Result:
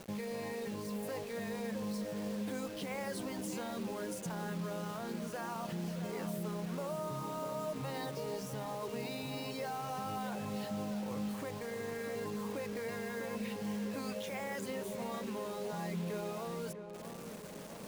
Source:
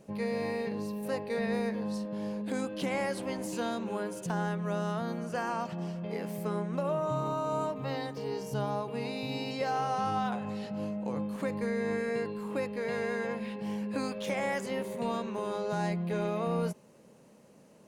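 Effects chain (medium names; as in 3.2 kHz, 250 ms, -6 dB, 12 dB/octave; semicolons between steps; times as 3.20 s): de-hum 240.6 Hz, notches 29; reverb removal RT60 0.66 s; reverse; compression 5:1, threshold -44 dBFS, peak gain reduction 14.5 dB; reverse; peak limiter -42.5 dBFS, peak gain reduction 9 dB; bit crusher 10-bit; on a send: filtered feedback delay 649 ms, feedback 62%, low-pass 1.8 kHz, level -8.5 dB; on the sum: trim +10 dB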